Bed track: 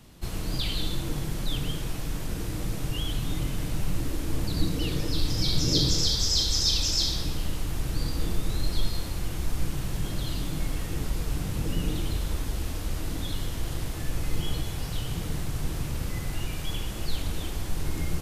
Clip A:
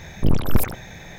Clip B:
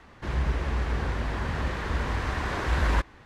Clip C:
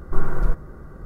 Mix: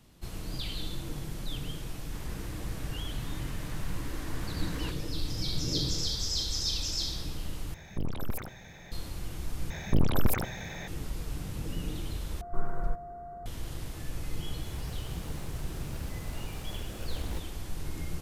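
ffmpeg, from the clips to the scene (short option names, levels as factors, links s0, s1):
-filter_complex "[2:a]asplit=2[s0][s1];[1:a]asplit=2[s2][s3];[0:a]volume=0.447[s4];[s0]aemphasis=mode=production:type=75kf[s5];[s2]acompressor=threshold=0.141:ratio=6:attack=3.2:release=140:knee=1:detection=peak[s6];[s3]acompressor=threshold=0.141:ratio=10:attack=3.2:release=158:knee=1:detection=rms[s7];[3:a]aeval=exprs='val(0)+0.0316*sin(2*PI*700*n/s)':c=same[s8];[s1]acrusher=samples=34:mix=1:aa=0.000001:lfo=1:lforange=20.4:lforate=0.85[s9];[s4]asplit=4[s10][s11][s12][s13];[s10]atrim=end=7.744[s14];[s6]atrim=end=1.18,asetpts=PTS-STARTPTS,volume=0.335[s15];[s11]atrim=start=8.916:end=9.704[s16];[s7]atrim=end=1.18[s17];[s12]atrim=start=10.876:end=12.414[s18];[s8]atrim=end=1.05,asetpts=PTS-STARTPTS,volume=0.282[s19];[s13]atrim=start=13.456[s20];[s5]atrim=end=3.25,asetpts=PTS-STARTPTS,volume=0.15,afade=t=in:d=0.004:c=hsin,afade=t=out:st=3.246:d=0.004:c=hsin,adelay=1900[s21];[s9]atrim=end=3.25,asetpts=PTS-STARTPTS,volume=0.168,afade=t=in:d=0.004:c=hsin,afade=t=out:st=3.246:d=0.004:c=hsin,adelay=14380[s22];[s14][s15]acrossfade=d=0.004:c1=hsin:c2=hsin[s23];[s23][s16]acrossfade=d=0.004:c1=hsin:c2=hsin[s24];[s24][s17]acrossfade=d=0.004:c1=hsin:c2=hsin[s25];[s25][s18]acrossfade=d=0.004:c1=hsin:c2=hsin[s26];[s26][s19]acrossfade=d=0.004:c1=hsin:c2=hsin[s27];[s27][s20]acrossfade=d=0.004:c1=hsin:c2=hsin[s28];[s28][s21][s22]amix=inputs=3:normalize=0"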